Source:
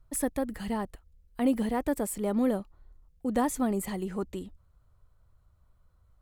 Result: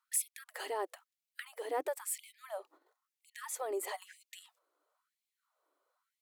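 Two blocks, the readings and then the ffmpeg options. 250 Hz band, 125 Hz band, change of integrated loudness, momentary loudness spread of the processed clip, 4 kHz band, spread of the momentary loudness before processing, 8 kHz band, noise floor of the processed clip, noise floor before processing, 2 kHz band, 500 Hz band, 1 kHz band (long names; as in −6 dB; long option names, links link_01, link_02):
−27.0 dB, below −40 dB, −9.0 dB, 17 LU, −1.5 dB, 13 LU, 0.0 dB, below −85 dBFS, −64 dBFS, −3.5 dB, −8.0 dB, −7.0 dB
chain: -af "agate=range=-10dB:threshold=-50dB:ratio=16:detection=peak,lowshelf=frequency=310:gain=9.5,acompressor=threshold=-33dB:ratio=10,afftfilt=real='re*gte(b*sr/1024,260*pow(2100/260,0.5+0.5*sin(2*PI*1*pts/sr)))':imag='im*gte(b*sr/1024,260*pow(2100/260,0.5+0.5*sin(2*PI*1*pts/sr)))':win_size=1024:overlap=0.75,volume=7.5dB"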